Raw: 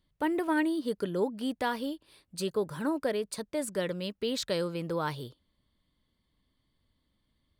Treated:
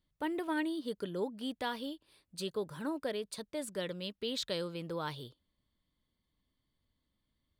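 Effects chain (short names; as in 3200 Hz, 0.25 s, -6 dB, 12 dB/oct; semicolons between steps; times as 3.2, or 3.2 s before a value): dynamic EQ 3500 Hz, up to +7 dB, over -55 dBFS, Q 2.1; gain -6.5 dB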